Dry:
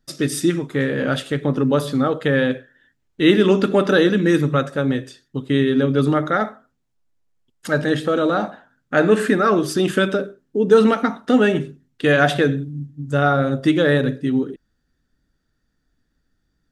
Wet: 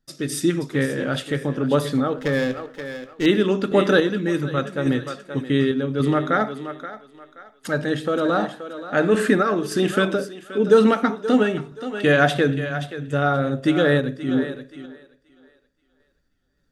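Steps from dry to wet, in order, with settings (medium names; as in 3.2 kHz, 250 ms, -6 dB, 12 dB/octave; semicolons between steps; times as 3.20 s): thinning echo 527 ms, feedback 28%, high-pass 340 Hz, level -11 dB; random-step tremolo; 2.18–3.26 s: sliding maximum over 5 samples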